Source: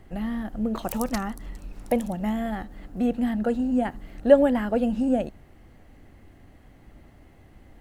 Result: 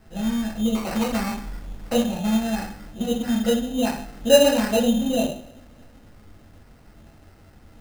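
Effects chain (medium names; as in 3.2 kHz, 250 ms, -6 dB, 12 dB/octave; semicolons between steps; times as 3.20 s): two-slope reverb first 0.49 s, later 2.3 s, from -27 dB, DRR -8.5 dB; sample-and-hold 13×; trim -6 dB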